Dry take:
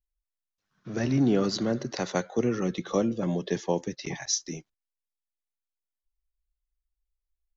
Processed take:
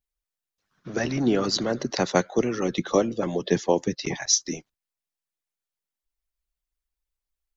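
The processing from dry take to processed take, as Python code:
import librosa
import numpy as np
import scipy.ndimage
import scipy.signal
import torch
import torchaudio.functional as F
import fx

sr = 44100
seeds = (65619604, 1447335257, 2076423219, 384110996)

y = fx.hpss(x, sr, part='harmonic', gain_db=-12)
y = y * librosa.db_to_amplitude(7.5)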